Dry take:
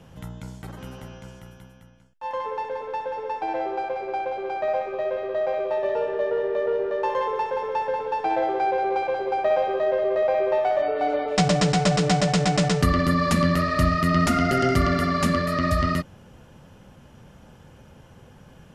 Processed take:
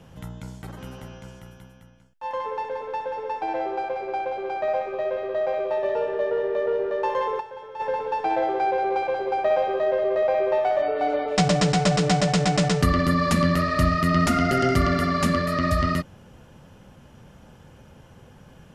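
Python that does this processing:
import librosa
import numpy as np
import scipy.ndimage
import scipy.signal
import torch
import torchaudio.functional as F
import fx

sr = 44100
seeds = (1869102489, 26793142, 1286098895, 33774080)

y = fx.comb_fb(x, sr, f0_hz=120.0, decay_s=0.31, harmonics='odd', damping=0.0, mix_pct=80, at=(7.39, 7.79), fade=0.02)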